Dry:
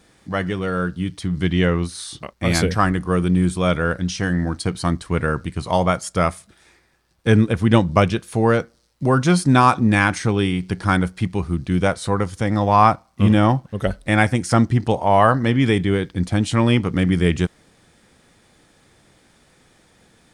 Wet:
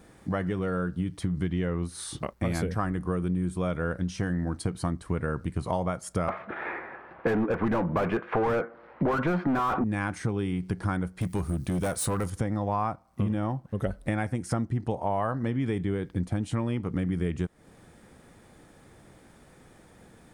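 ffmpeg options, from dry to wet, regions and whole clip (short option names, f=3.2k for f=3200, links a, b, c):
-filter_complex "[0:a]asettb=1/sr,asplit=3[a][b][c];[a]atrim=end=6.284[d];[b]atrim=start=6.28:end=9.84,asetpts=PTS-STARTPTS,afade=t=in:d=0.004:c=qsin,afade=t=out:st=3.556:d=0.004:c=qsin,lowpass=f=2.4k:w=0.5412,lowpass=f=2.4k:w=1.3066,lowshelf=f=230:g=-10,asplit=2[e][f];[f]highpass=f=720:p=1,volume=34dB,asoftclip=type=tanh:threshold=-1.5dB[g];[e][g]amix=inputs=2:normalize=0,lowpass=f=1.4k:p=1,volume=-6dB[h];[c]atrim=start=9.836[i];[d][h]acrossfade=d=0.004:c1=hsin:c2=qsin[j];[j][i]acrossfade=d=0.004:c1=qsin:c2=hsin,asettb=1/sr,asplit=3[k][l][m];[k]atrim=end=11.214[n];[l]atrim=start=11.21:end=12.3,asetpts=PTS-STARTPTS,afade=t=in:d=0.004:c=qsin,afade=t=out:st=1.086:d=0.004:c=qsin,aemphasis=mode=production:type=75fm,asoftclip=type=hard:threshold=-19dB[o];[m]atrim=start=12.296[p];[n][o]acrossfade=d=0.004:c1=hsin:c2=qsin[q];[q][p]acrossfade=d=0.004:c1=qsin:c2=hsin,equalizer=f=4.4k:t=o:w=2.3:g=-10.5,acompressor=threshold=-29dB:ratio=6,volume=3dB"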